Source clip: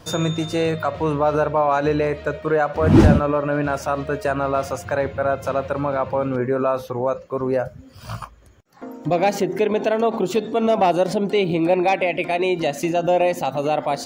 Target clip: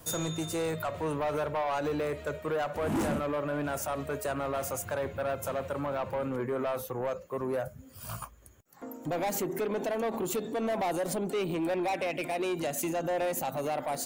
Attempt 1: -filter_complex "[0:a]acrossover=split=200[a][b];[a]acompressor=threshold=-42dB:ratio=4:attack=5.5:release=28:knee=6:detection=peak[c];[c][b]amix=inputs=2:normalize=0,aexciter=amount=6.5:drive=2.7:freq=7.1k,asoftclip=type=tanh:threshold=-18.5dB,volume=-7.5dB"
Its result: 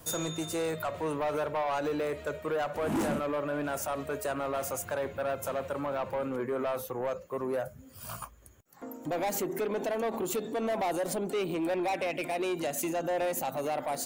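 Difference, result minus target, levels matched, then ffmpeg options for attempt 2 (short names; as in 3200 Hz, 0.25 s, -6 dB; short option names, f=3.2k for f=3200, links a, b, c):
compressor: peak gain reduction +8.5 dB
-filter_complex "[0:a]acrossover=split=200[a][b];[a]acompressor=threshold=-30.5dB:ratio=4:attack=5.5:release=28:knee=6:detection=peak[c];[c][b]amix=inputs=2:normalize=0,aexciter=amount=6.5:drive=2.7:freq=7.1k,asoftclip=type=tanh:threshold=-18.5dB,volume=-7.5dB"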